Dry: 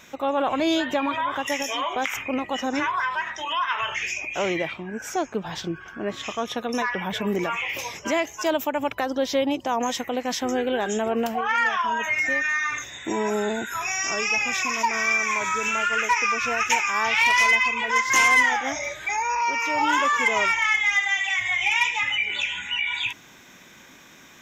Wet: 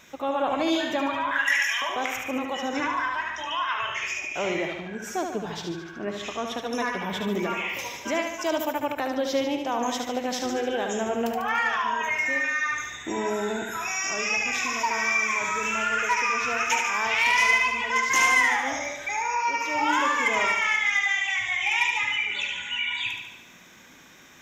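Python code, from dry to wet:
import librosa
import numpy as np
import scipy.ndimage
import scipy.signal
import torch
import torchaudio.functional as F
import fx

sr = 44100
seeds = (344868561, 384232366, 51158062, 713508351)

y = fx.highpass_res(x, sr, hz=1700.0, q=7.5, at=(1.31, 1.82))
y = fx.echo_feedback(y, sr, ms=73, feedback_pct=58, wet_db=-5.5)
y = y * 10.0 ** (-3.5 / 20.0)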